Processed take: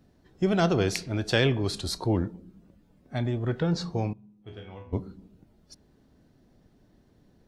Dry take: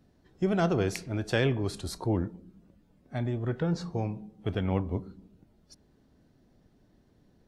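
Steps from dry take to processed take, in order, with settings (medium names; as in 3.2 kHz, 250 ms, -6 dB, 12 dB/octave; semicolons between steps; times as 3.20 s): dynamic bell 4.2 kHz, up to +7 dB, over -55 dBFS, Q 1.1; 4.13–4.93 s: chord resonator E2 major, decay 0.52 s; trim +2.5 dB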